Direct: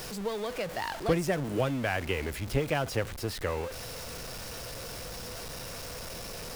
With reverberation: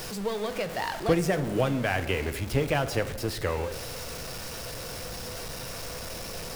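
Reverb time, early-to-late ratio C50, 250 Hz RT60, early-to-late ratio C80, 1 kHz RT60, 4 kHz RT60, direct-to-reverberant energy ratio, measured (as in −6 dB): 1.3 s, 13.5 dB, 1.8 s, 15.0 dB, 1.0 s, 0.80 s, 10.0 dB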